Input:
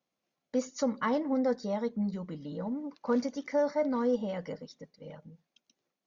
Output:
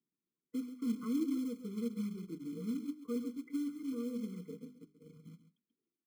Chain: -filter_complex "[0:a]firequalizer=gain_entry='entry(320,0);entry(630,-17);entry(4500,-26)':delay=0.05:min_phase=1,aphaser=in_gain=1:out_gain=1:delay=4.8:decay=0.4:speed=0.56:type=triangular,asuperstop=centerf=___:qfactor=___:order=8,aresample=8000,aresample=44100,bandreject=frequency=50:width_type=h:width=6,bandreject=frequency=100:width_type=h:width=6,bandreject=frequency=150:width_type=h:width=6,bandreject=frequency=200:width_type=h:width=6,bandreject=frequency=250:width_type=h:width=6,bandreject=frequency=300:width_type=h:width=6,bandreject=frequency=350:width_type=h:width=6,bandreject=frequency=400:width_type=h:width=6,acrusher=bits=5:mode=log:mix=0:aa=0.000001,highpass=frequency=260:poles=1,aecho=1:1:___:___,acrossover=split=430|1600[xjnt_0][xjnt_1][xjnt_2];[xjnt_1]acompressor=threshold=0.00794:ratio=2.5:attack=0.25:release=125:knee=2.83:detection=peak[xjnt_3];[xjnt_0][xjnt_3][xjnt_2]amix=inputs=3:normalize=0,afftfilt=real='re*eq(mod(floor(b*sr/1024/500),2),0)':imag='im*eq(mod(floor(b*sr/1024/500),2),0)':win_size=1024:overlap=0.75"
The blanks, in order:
680, 3.3, 135, 0.251